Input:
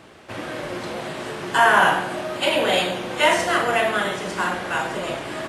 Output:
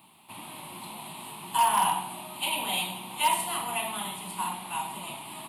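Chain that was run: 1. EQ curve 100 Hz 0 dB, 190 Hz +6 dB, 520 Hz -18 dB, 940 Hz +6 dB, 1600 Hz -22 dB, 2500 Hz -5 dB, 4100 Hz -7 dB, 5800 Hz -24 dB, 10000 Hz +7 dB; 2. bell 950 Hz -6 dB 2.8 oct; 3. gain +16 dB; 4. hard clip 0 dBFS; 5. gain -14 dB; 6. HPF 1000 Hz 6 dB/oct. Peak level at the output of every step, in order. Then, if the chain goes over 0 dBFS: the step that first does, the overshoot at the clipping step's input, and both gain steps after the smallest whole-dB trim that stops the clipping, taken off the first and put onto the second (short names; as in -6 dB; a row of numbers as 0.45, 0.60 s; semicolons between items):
-4.0, -9.0, +7.0, 0.0, -14.0, -12.0 dBFS; step 3, 7.0 dB; step 3 +9 dB, step 5 -7 dB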